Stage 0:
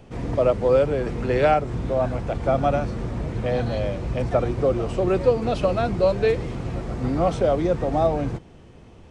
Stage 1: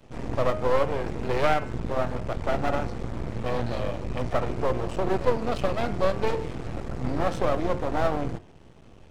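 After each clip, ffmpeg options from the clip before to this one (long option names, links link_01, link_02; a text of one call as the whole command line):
ffmpeg -i in.wav -af "aeval=exprs='max(val(0),0)':channel_layout=same,bandreject=frequency=88.89:width_type=h:width=4,bandreject=frequency=177.78:width_type=h:width=4,bandreject=frequency=266.67:width_type=h:width=4,bandreject=frequency=355.56:width_type=h:width=4,bandreject=frequency=444.45:width_type=h:width=4,bandreject=frequency=533.34:width_type=h:width=4,bandreject=frequency=622.23:width_type=h:width=4,bandreject=frequency=711.12:width_type=h:width=4,bandreject=frequency=800.01:width_type=h:width=4,bandreject=frequency=888.9:width_type=h:width=4,bandreject=frequency=977.79:width_type=h:width=4,bandreject=frequency=1066.68:width_type=h:width=4,bandreject=frequency=1155.57:width_type=h:width=4,bandreject=frequency=1244.46:width_type=h:width=4,bandreject=frequency=1333.35:width_type=h:width=4,bandreject=frequency=1422.24:width_type=h:width=4,bandreject=frequency=1511.13:width_type=h:width=4,bandreject=frequency=1600.02:width_type=h:width=4,bandreject=frequency=1688.91:width_type=h:width=4,bandreject=frequency=1777.8:width_type=h:width=4,bandreject=frequency=1866.69:width_type=h:width=4,bandreject=frequency=1955.58:width_type=h:width=4,bandreject=frequency=2044.47:width_type=h:width=4,bandreject=frequency=2133.36:width_type=h:width=4,bandreject=frequency=2222.25:width_type=h:width=4,bandreject=frequency=2311.14:width_type=h:width=4,bandreject=frequency=2400.03:width_type=h:width=4,bandreject=frequency=2488.92:width_type=h:width=4,bandreject=frequency=2577.81:width_type=h:width=4,bandreject=frequency=2666.7:width_type=h:width=4,bandreject=frequency=2755.59:width_type=h:width=4,bandreject=frequency=2844.48:width_type=h:width=4,bandreject=frequency=2933.37:width_type=h:width=4,bandreject=frequency=3022.26:width_type=h:width=4,bandreject=frequency=3111.15:width_type=h:width=4" out.wav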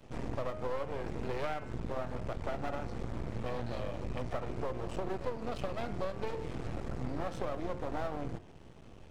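ffmpeg -i in.wav -af "acompressor=threshold=-30dB:ratio=4,volume=-2.5dB" out.wav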